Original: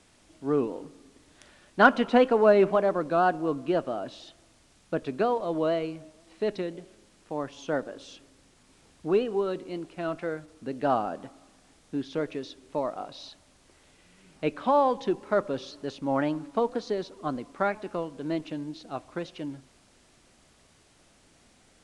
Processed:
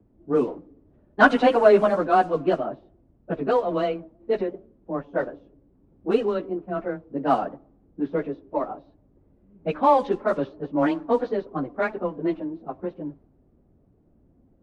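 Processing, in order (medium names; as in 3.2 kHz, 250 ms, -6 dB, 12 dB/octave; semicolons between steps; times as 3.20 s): level-controlled noise filter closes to 330 Hz, open at -19 dBFS; frequency shift +14 Hz; plain phase-vocoder stretch 0.67×; in parallel at -11 dB: saturation -23 dBFS, distortion -10 dB; on the sum: trim +6 dB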